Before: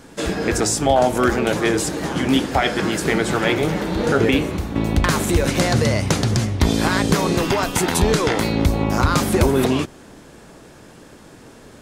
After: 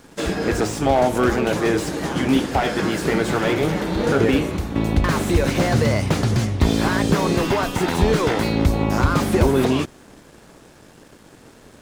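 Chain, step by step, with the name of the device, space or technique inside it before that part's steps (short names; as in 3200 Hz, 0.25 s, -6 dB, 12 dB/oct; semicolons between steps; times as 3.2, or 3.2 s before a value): early transistor amplifier (crossover distortion -50.5 dBFS; slew limiter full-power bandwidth 170 Hz)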